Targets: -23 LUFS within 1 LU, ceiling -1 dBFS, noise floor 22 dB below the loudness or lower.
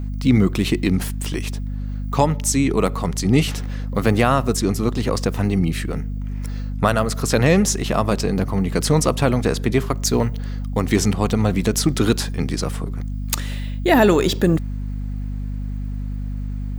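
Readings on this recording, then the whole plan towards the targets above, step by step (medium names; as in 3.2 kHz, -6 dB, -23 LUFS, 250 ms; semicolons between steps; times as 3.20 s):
hum 50 Hz; highest harmonic 250 Hz; hum level -23 dBFS; loudness -20.5 LUFS; peak level -1.5 dBFS; loudness target -23.0 LUFS
-> de-hum 50 Hz, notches 5; trim -2.5 dB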